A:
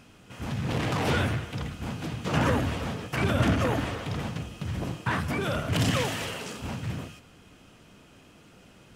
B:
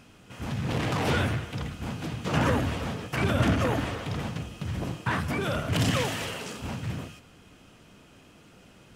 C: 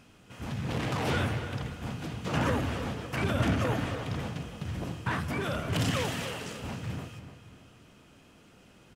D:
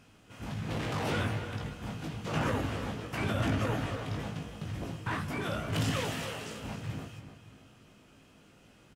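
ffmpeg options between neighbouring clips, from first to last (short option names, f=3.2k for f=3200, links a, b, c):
-af anull
-filter_complex "[0:a]asplit=2[a][b];[b]adelay=294,lowpass=f=3.9k:p=1,volume=-10.5dB,asplit=2[c][d];[d]adelay=294,lowpass=f=3.9k:p=1,volume=0.39,asplit=2[e][f];[f]adelay=294,lowpass=f=3.9k:p=1,volume=0.39,asplit=2[g][h];[h]adelay=294,lowpass=f=3.9k:p=1,volume=0.39[i];[a][c][e][g][i]amix=inputs=5:normalize=0,volume=-3.5dB"
-filter_complex "[0:a]asplit=2[a][b];[b]aeval=exprs='clip(val(0),-1,0.0355)':c=same,volume=-11dB[c];[a][c]amix=inputs=2:normalize=0,asplit=2[d][e];[e]adelay=19,volume=-4.5dB[f];[d][f]amix=inputs=2:normalize=0,volume=-5.5dB"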